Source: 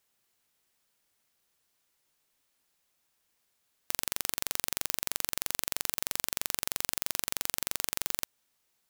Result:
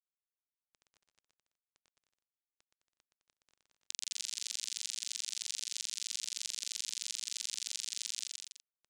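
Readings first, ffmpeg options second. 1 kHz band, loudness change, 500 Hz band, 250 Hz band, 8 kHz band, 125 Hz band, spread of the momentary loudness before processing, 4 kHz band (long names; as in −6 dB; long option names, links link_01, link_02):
below −25 dB, −6.0 dB, below −35 dB, below −35 dB, −2.5 dB, below −30 dB, 2 LU, −0.5 dB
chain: -filter_complex "[0:a]asubboost=boost=8.5:cutoff=140,bandreject=frequency=50:width_type=h:width=6,bandreject=frequency=100:width_type=h:width=6,bandreject=frequency=150:width_type=h:width=6,bandreject=frequency=200:width_type=h:width=6,bandreject=frequency=250:width_type=h:width=6,acrossover=split=400|3000[link_01][link_02][link_03];[link_02]acompressor=threshold=-41dB:ratio=6[link_04];[link_01][link_04][link_03]amix=inputs=3:normalize=0,aexciter=amount=10.7:drive=6.2:freq=2200,dynaudnorm=framelen=150:gausssize=3:maxgain=7dB,aeval=exprs='val(0)*gte(abs(val(0)),0.0237)':channel_layout=same,lowpass=frequency=7700:width=0.5412,lowpass=frequency=7700:width=1.3066,equalizer=frequency=230:width=2.7:gain=-3.5,aecho=1:1:120|210|277.5|328.1|366.1:0.631|0.398|0.251|0.158|0.1,volume=-6dB"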